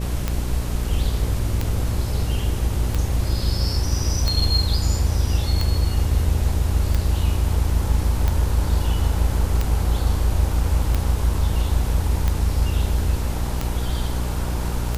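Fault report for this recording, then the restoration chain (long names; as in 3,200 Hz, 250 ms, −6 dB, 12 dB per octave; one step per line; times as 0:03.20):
mains buzz 60 Hz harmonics 10 −25 dBFS
scratch tick 45 rpm −9 dBFS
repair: click removal
hum removal 60 Hz, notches 10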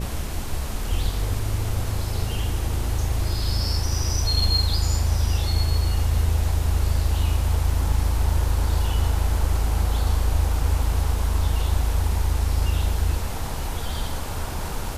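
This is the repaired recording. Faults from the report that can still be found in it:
none of them is left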